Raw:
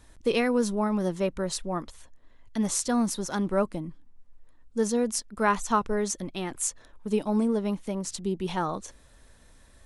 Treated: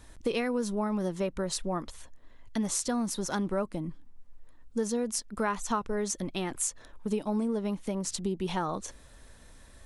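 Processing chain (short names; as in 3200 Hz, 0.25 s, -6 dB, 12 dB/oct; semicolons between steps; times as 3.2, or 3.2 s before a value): compressor 3:1, threshold -31 dBFS, peak gain reduction 10 dB; gain +2.5 dB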